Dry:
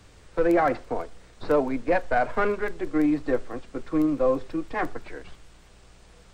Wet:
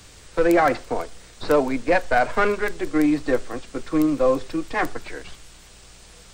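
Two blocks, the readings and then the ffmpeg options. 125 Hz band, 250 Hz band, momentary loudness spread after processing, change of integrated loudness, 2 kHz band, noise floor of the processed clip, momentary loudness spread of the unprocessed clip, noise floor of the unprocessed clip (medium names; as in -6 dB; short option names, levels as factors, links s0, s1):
+3.0 dB, +3.0 dB, 14 LU, +3.5 dB, +6.0 dB, -47 dBFS, 14 LU, -52 dBFS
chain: -af "highshelf=f=2800:g=11.5,volume=1.41"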